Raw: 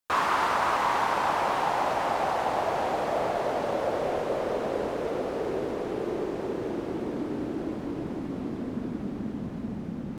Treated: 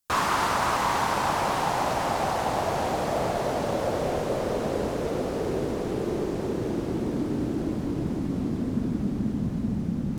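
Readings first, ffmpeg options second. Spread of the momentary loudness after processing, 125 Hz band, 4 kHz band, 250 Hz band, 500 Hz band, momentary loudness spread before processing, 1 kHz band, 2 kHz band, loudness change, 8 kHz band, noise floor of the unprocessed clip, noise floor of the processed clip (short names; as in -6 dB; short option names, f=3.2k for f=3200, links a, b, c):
5 LU, +9.0 dB, +3.5 dB, +4.5 dB, +1.0 dB, 9 LU, 0.0 dB, +0.5 dB, +1.5 dB, +8.0 dB, -36 dBFS, -31 dBFS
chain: -af "bass=f=250:g=10,treble=f=4k:g=9"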